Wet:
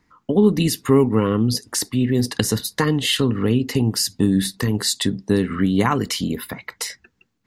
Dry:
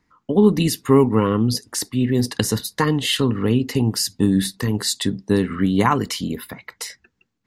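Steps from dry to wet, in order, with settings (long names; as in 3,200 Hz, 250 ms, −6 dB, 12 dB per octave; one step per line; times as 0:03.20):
dynamic equaliser 960 Hz, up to −4 dB, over −37 dBFS, Q 2.7
in parallel at +0.5 dB: downward compressor, threshold −25 dBFS, peak gain reduction 15.5 dB
on the sum: level −2.5 dB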